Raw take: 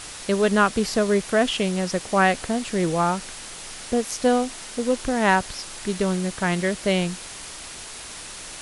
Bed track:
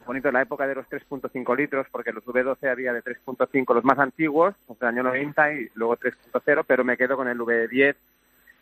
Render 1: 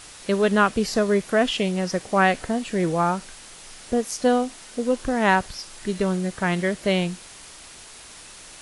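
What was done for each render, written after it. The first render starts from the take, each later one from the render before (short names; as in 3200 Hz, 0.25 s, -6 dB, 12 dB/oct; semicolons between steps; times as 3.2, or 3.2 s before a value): noise print and reduce 6 dB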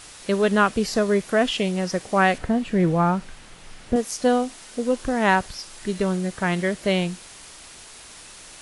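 2.38–3.96 tone controls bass +7 dB, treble -9 dB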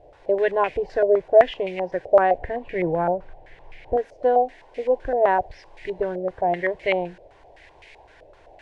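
fixed phaser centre 520 Hz, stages 4; stepped low-pass 7.8 Hz 610–2200 Hz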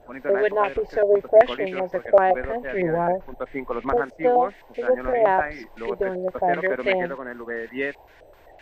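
add bed track -8.5 dB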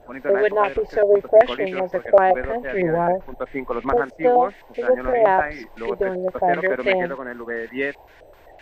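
gain +2.5 dB; limiter -3 dBFS, peak gain reduction 2 dB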